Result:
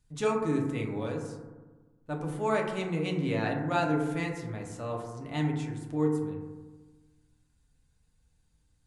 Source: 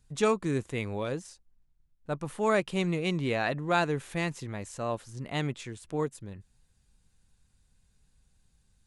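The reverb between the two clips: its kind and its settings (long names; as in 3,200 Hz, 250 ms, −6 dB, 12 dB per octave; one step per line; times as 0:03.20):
feedback delay network reverb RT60 1.3 s, low-frequency decay 1.25×, high-frequency decay 0.25×, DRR −0.5 dB
level −5.5 dB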